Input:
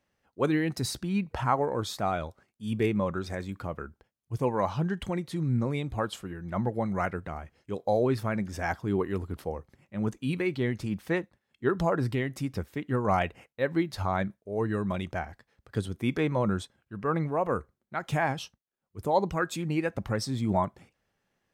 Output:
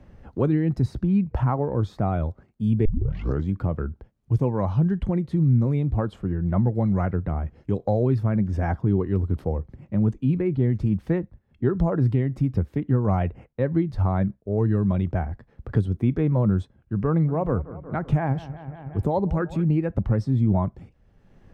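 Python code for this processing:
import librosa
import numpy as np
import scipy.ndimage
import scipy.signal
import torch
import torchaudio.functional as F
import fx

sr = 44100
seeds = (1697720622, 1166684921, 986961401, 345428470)

y = fx.high_shelf(x, sr, hz=2900.0, db=-7.5, at=(9.57, 10.7))
y = fx.echo_bbd(y, sr, ms=184, stages=4096, feedback_pct=57, wet_db=-18.0, at=(17.1, 19.65))
y = fx.edit(y, sr, fx.tape_start(start_s=2.85, length_s=0.65), tone=tone)
y = fx.tilt_eq(y, sr, slope=-4.5)
y = fx.band_squash(y, sr, depth_pct=70)
y = F.gain(torch.from_numpy(y), -3.0).numpy()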